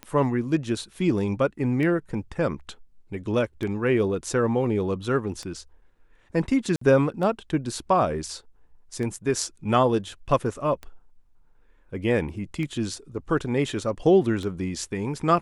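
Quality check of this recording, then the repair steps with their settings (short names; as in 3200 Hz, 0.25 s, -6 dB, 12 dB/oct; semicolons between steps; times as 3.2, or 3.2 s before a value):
tick 33 1/3 rpm -20 dBFS
6.76–6.81 gap 54 ms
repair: de-click; interpolate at 6.76, 54 ms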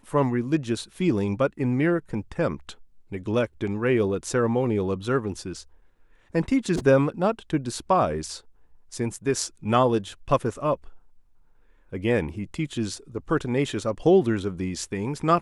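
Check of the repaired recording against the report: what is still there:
none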